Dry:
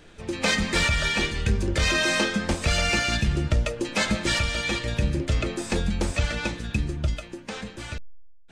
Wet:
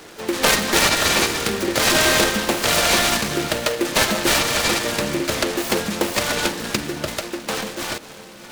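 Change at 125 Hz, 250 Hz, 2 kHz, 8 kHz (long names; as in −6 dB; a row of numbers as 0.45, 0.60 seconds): −5.0, +4.5, +5.0, +11.5 decibels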